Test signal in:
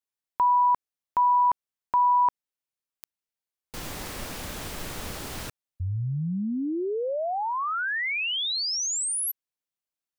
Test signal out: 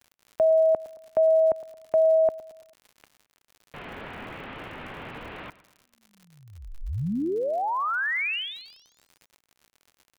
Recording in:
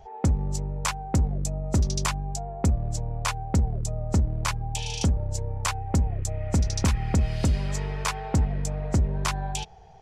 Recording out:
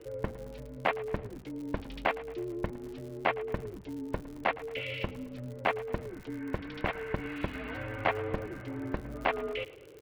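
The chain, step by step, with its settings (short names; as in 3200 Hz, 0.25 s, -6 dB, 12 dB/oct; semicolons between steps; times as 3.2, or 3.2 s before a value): mistuned SSB -340 Hz 420–3200 Hz; treble ducked by the level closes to 1900 Hz, closed at -21.5 dBFS; on a send: feedback echo 0.111 s, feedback 47%, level -18 dB; on the sum: crackle 99/s -43 dBFS; gain +1.5 dB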